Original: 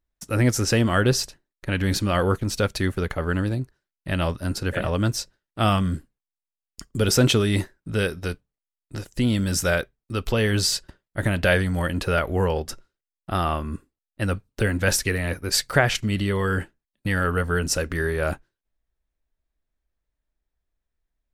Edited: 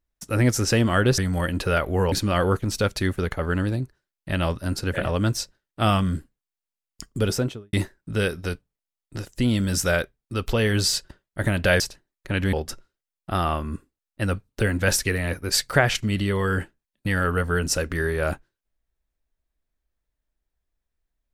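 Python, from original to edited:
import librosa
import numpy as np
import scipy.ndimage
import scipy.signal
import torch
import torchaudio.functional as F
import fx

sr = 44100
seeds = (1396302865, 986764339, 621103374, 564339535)

y = fx.studio_fade_out(x, sr, start_s=6.89, length_s=0.63)
y = fx.edit(y, sr, fx.swap(start_s=1.18, length_s=0.73, other_s=11.59, other_length_s=0.94), tone=tone)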